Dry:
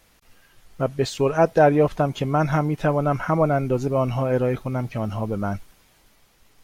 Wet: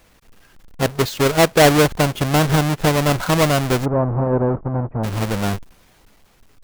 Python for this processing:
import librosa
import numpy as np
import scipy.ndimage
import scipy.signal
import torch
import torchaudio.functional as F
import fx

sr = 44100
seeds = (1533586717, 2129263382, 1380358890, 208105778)

y = fx.halfwave_hold(x, sr)
y = fx.lowpass(y, sr, hz=1100.0, slope=24, at=(3.84, 5.03), fade=0.02)